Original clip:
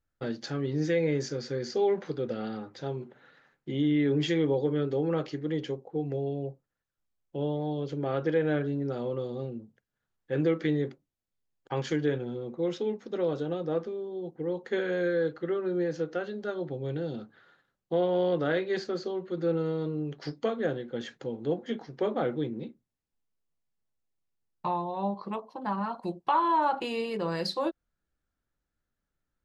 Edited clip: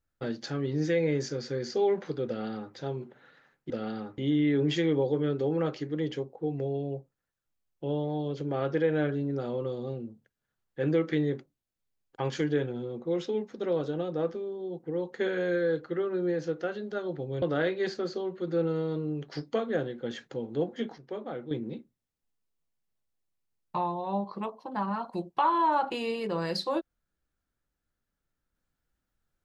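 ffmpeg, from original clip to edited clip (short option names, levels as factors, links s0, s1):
-filter_complex "[0:a]asplit=6[s0][s1][s2][s3][s4][s5];[s0]atrim=end=3.702[s6];[s1]atrim=start=2.268:end=2.752[s7];[s2]atrim=start=3.698:end=16.942[s8];[s3]atrim=start=18.318:end=21.882[s9];[s4]atrim=start=21.878:end=22.412,asetpts=PTS-STARTPTS,volume=0.376[s10];[s5]atrim=start=22.408[s11];[s6][s7]acrossfade=d=0.004:c1=hsin:c2=hsin[s12];[s12][s8]acrossfade=d=0.004:c1=hsin:c2=hsin[s13];[s13][s9]acrossfade=d=0.004:c1=hsin:c2=hsin[s14];[s14][s10]acrossfade=d=0.004:c1=hsin:c2=hsin[s15];[s15][s11]acrossfade=d=0.004:c1=hsin:c2=hsin"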